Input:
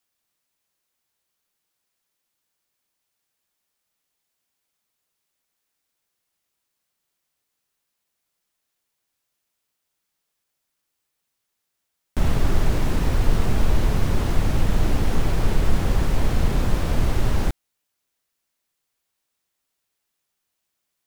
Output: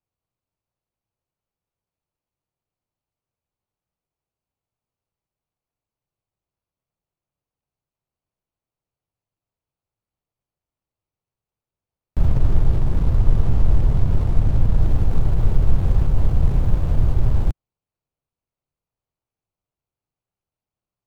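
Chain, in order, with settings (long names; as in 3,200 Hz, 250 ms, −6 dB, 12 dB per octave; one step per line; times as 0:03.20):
running median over 25 samples
low shelf with overshoot 170 Hz +6.5 dB, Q 1.5
0:12.26–0:14.77: highs frequency-modulated by the lows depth 0.53 ms
level −3 dB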